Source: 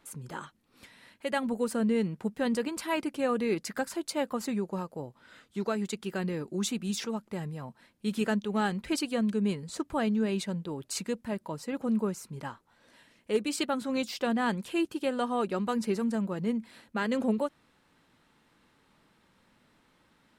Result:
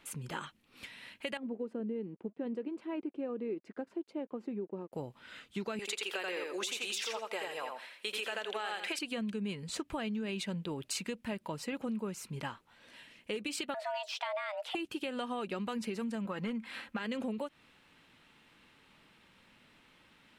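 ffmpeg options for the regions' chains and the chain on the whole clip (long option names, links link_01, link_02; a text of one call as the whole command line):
ffmpeg -i in.wav -filter_complex "[0:a]asettb=1/sr,asplit=3[link_01][link_02][link_03];[link_01]atrim=end=1.374[link_04];[link_02]atrim=start=1.37:end=4.93,asetpts=PTS-STARTPTS,afade=type=in:duration=0.004:curve=qsin,afade=type=out:start_time=3.556:duration=0.004:curve=qsin,aeval=exprs='sgn(val(0))*max(abs(val(0))-0.00168,0)':channel_layout=same,bandpass=frequency=350:width_type=q:width=2[link_05];[link_03]atrim=start=4.926[link_06];[link_04][link_05]acrossfade=duration=0.004:curve1=hsin:curve2=qsin[link_07];[link_07][link_06]acrossfade=duration=0.004:curve1=qsin:curve2=hsin,asettb=1/sr,asplit=3[link_08][link_09][link_10];[link_08]atrim=end=5.794[link_11];[link_09]atrim=start=5.79:end=8.99,asetpts=PTS-STARTPTS,afade=type=in:duration=0.004:curve=qsin,afade=type=out:start_time=3.196:duration=0.004:curve=qsin,highpass=frequency=450:width=0.5412,highpass=frequency=450:width=1.3066,acontrast=38,aecho=1:1:84|168|252:0.631|0.114|0.0204,atrim=end_sample=141120[link_12];[link_10]atrim=start=8.986[link_13];[link_11][link_12]acrossfade=duration=0.004:curve1=hsin:curve2=qsin[link_14];[link_14][link_13]acrossfade=duration=0.004:curve1=qsin:curve2=hsin,asettb=1/sr,asplit=3[link_15][link_16][link_17];[link_15]atrim=end=13.744[link_18];[link_16]atrim=start=13.74:end=14.75,asetpts=PTS-STARTPTS,afade=type=in:duration=0.004:curve=qsin,afade=type=out:start_time=1.006:duration=0.004:curve=qsin,aemphasis=mode=reproduction:type=50kf,afreqshift=410[link_19];[link_17]atrim=start=14.746[link_20];[link_18][link_19]acrossfade=duration=0.004:curve1=hsin:curve2=qsin[link_21];[link_21][link_20]acrossfade=duration=0.004:curve1=qsin:curve2=hsin,asettb=1/sr,asplit=3[link_22][link_23][link_24];[link_22]atrim=end=16.254[link_25];[link_23]atrim=start=16.25:end=16.99,asetpts=PTS-STARTPTS,afade=type=in:duration=0.004:curve=qsin,afade=type=out:start_time=0.736:duration=0.004:curve=qsin,volume=23dB,asoftclip=hard,volume=-23dB,equalizer=frequency=1300:width=0.76:gain=9,aecho=1:1:3.8:0.34,atrim=end_sample=32634[link_26];[link_24]atrim=start=16.986[link_27];[link_25][link_26]acrossfade=duration=0.004:curve1=hsin:curve2=qsin[link_28];[link_28][link_27]acrossfade=duration=0.004:curve1=qsin:curve2=hsin,equalizer=frequency=2700:width=1.4:gain=9.5,alimiter=limit=-21dB:level=0:latency=1:release=89,acompressor=threshold=-34dB:ratio=6" out.wav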